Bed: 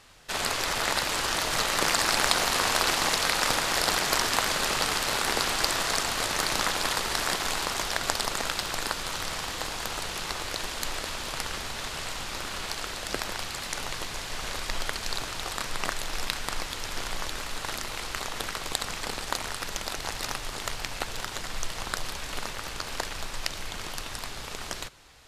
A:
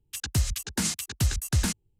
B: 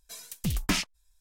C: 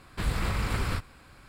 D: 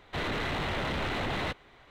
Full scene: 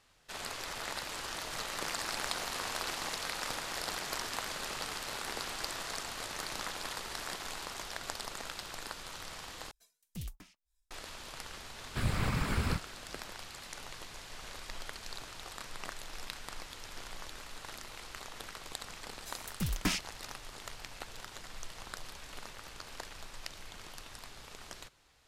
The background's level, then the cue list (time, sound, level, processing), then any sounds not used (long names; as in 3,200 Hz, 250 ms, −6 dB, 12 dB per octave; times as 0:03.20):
bed −12.5 dB
0:09.71: overwrite with B −11 dB + tremolo with a sine in dB 1.9 Hz, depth 24 dB
0:11.78: mix in C −3 dB + random phases in short frames
0:19.16: mix in B −5 dB
not used: A, D